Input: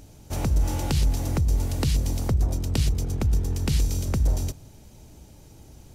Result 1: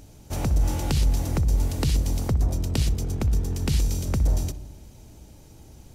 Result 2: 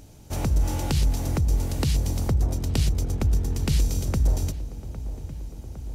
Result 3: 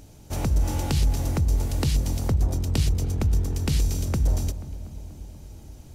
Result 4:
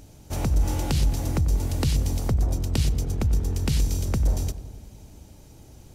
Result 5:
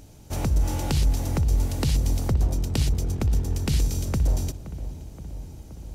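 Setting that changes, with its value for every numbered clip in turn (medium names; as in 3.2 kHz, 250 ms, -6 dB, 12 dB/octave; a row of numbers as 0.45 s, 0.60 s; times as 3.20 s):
filtered feedback delay, time: 63 ms, 808 ms, 242 ms, 94 ms, 523 ms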